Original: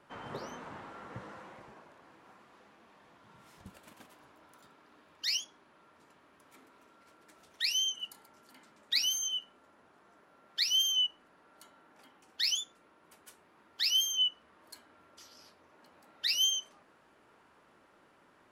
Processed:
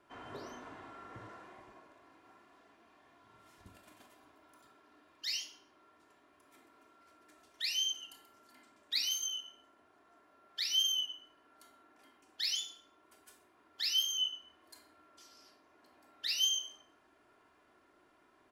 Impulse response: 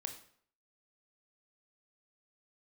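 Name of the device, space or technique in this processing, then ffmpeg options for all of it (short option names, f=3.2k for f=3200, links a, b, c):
microphone above a desk: -filter_complex "[0:a]aecho=1:1:2.9:0.52[a];[1:a]atrim=start_sample=2205[b];[a][b]afir=irnorm=-1:irlink=0,volume=-3dB"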